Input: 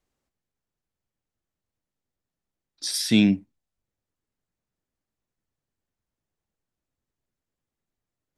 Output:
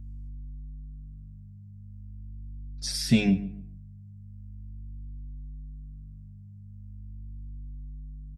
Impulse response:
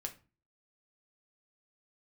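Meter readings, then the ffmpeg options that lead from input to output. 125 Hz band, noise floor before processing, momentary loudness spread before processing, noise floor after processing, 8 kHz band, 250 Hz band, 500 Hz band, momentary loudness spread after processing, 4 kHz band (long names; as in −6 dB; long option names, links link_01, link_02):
+2.5 dB, below −85 dBFS, 11 LU, −46 dBFS, −4.5 dB, −3.0 dB, −1.5 dB, 21 LU, −4.5 dB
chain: -filter_complex "[0:a]acrossover=split=6200[link_01][link_02];[link_02]acompressor=threshold=-36dB:ratio=4:attack=1:release=60[link_03];[link_01][link_03]amix=inputs=2:normalize=0,superequalizer=6b=0.316:8b=1.58:13b=0.562,aeval=exprs='val(0)+0.00316*(sin(2*PI*50*n/s)+sin(2*PI*2*50*n/s)/2+sin(2*PI*3*50*n/s)/3+sin(2*PI*4*50*n/s)/4+sin(2*PI*5*50*n/s)/5)':channel_layout=same,bass=frequency=250:gain=12,treble=frequency=4000:gain=2,asplit=2[link_04][link_05];[link_05]adelay=141,lowpass=frequency=1700:poles=1,volume=-16dB,asplit=2[link_06][link_07];[link_07]adelay=141,lowpass=frequency=1700:poles=1,volume=0.28,asplit=2[link_08][link_09];[link_09]adelay=141,lowpass=frequency=1700:poles=1,volume=0.28[link_10];[link_04][link_06][link_08][link_10]amix=inputs=4:normalize=0,asplit=2[link_11][link_12];[link_12]adelay=5.9,afreqshift=0.41[link_13];[link_11][link_13]amix=inputs=2:normalize=1"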